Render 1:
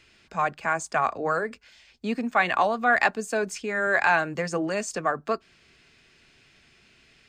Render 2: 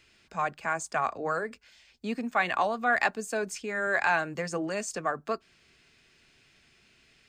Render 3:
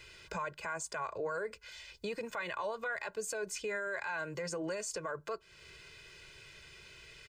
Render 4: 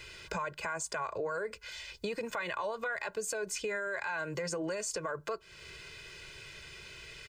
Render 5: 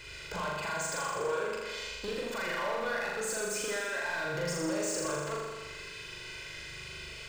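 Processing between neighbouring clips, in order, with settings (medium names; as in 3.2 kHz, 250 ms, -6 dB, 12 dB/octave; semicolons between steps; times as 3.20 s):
treble shelf 7.5 kHz +5.5 dB; trim -4.5 dB
comb 2 ms, depth 92%; compression 2.5:1, threshold -41 dBFS, peak gain reduction 15 dB; peak limiter -34 dBFS, peak gain reduction 10.5 dB; trim +5 dB
compression 2.5:1, threshold -39 dBFS, peak gain reduction 4.5 dB; trim +5.5 dB
hard clipper -34.5 dBFS, distortion -11 dB; on a send: flutter echo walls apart 7 m, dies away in 1.5 s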